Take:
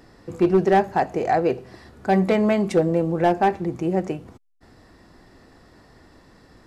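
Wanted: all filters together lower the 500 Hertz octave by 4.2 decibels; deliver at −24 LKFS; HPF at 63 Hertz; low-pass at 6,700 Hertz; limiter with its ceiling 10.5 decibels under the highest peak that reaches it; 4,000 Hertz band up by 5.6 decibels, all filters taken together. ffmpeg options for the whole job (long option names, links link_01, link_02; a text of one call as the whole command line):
ffmpeg -i in.wav -af "highpass=63,lowpass=6700,equalizer=frequency=500:width_type=o:gain=-6,equalizer=frequency=4000:width_type=o:gain=8,volume=4.5dB,alimiter=limit=-13.5dB:level=0:latency=1" out.wav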